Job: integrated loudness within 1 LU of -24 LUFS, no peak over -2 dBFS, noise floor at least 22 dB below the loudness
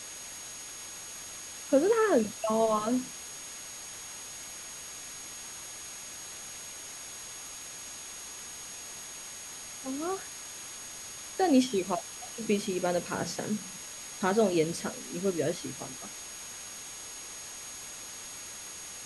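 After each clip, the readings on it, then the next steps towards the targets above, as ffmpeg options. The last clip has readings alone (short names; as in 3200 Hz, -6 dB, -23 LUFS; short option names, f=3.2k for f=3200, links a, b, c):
steady tone 6600 Hz; tone level -44 dBFS; noise floor -44 dBFS; noise floor target -56 dBFS; loudness -33.5 LUFS; peak -12.0 dBFS; loudness target -24.0 LUFS
-> -af "bandreject=f=6.6k:w=30"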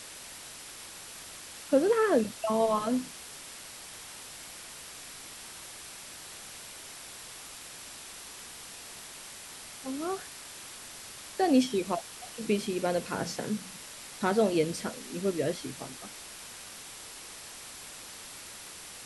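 steady tone none; noise floor -46 dBFS; noise floor target -56 dBFS
-> -af "afftdn=nr=10:nf=-46"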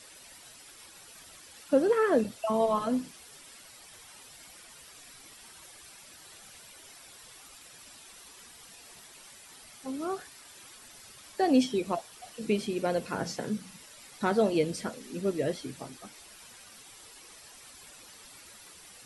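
noise floor -52 dBFS; loudness -30.0 LUFS; peak -12.5 dBFS; loudness target -24.0 LUFS
-> -af "volume=6dB"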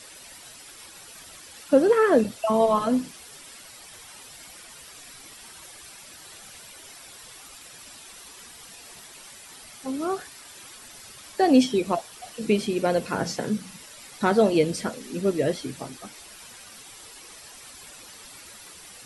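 loudness -24.0 LUFS; peak -6.5 dBFS; noise floor -46 dBFS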